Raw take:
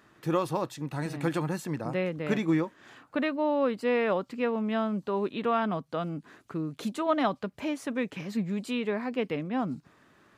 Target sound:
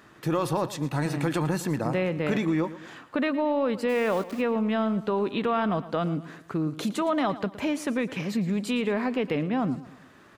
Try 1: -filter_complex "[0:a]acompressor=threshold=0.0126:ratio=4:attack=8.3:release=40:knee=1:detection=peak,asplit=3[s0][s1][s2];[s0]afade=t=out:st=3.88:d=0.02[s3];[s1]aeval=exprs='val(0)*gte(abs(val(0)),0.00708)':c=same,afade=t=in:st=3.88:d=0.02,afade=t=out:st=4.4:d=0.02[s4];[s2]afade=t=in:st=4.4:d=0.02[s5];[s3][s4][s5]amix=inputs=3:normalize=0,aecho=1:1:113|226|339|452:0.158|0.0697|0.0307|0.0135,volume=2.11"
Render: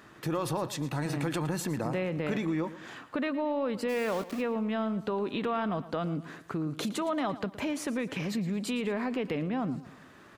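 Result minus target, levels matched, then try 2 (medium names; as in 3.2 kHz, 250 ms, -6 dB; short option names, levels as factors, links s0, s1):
compression: peak gain reduction +5 dB
-filter_complex "[0:a]acompressor=threshold=0.0282:ratio=4:attack=8.3:release=40:knee=1:detection=peak,asplit=3[s0][s1][s2];[s0]afade=t=out:st=3.88:d=0.02[s3];[s1]aeval=exprs='val(0)*gte(abs(val(0)),0.00708)':c=same,afade=t=in:st=3.88:d=0.02,afade=t=out:st=4.4:d=0.02[s4];[s2]afade=t=in:st=4.4:d=0.02[s5];[s3][s4][s5]amix=inputs=3:normalize=0,aecho=1:1:113|226|339|452:0.158|0.0697|0.0307|0.0135,volume=2.11"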